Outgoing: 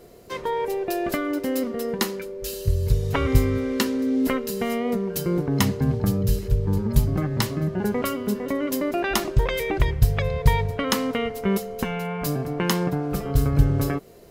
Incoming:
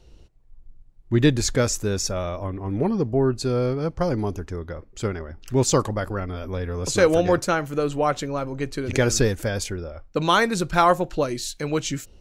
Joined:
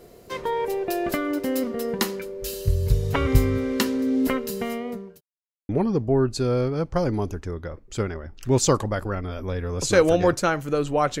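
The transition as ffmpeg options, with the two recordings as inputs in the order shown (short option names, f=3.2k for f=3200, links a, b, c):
-filter_complex "[0:a]apad=whole_dur=11.2,atrim=end=11.2,asplit=2[a][b];[a]atrim=end=5.21,asetpts=PTS-STARTPTS,afade=t=out:st=4.13:d=1.08:c=qsin[c];[b]atrim=start=5.21:end=5.69,asetpts=PTS-STARTPTS,volume=0[d];[1:a]atrim=start=2.74:end=8.25,asetpts=PTS-STARTPTS,afade=t=in:d=0.004:c=hsin[e];[c][d][e]concat=n=3:v=0:a=1"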